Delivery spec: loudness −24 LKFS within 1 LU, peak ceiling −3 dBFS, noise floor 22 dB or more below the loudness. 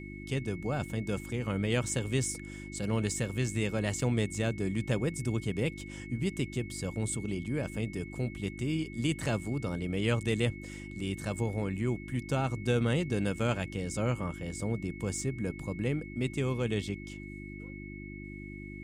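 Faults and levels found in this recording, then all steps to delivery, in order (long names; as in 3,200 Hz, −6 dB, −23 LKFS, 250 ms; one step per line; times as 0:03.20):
mains hum 50 Hz; hum harmonics up to 350 Hz; level of the hum −41 dBFS; interfering tone 2,200 Hz; level of the tone −48 dBFS; integrated loudness −33.0 LKFS; sample peak −16.0 dBFS; target loudness −24.0 LKFS
→ hum removal 50 Hz, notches 7
notch filter 2,200 Hz, Q 30
level +9 dB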